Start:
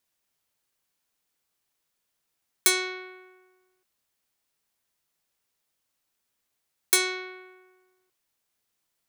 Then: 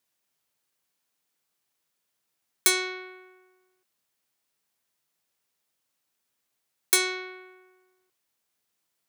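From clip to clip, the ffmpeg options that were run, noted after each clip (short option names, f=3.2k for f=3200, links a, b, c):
-af "highpass=92"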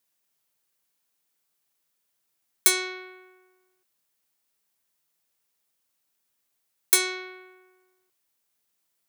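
-af "crystalizer=i=0.5:c=0,volume=-1dB"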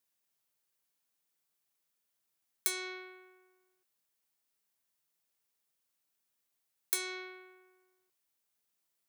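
-af "acompressor=threshold=-26dB:ratio=2.5,volume=-6dB"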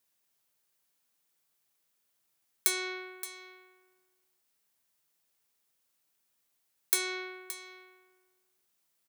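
-af "aecho=1:1:572:0.211,volume=5dB"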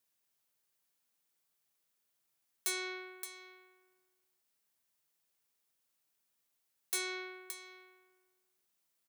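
-af "asoftclip=type=hard:threshold=-24.5dB,volume=-4dB"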